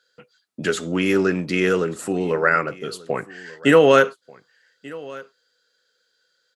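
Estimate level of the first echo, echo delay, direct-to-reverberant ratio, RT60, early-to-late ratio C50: -21.5 dB, 1.187 s, none, none, none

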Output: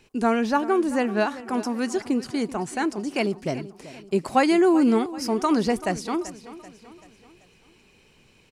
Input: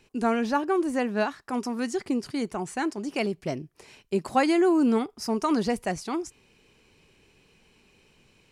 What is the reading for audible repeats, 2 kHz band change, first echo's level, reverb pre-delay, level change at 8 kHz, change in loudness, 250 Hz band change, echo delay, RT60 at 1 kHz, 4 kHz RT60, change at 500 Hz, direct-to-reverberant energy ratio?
3, +3.0 dB, -16.0 dB, none, +3.0 dB, +3.0 dB, +3.0 dB, 0.385 s, none, none, +3.0 dB, none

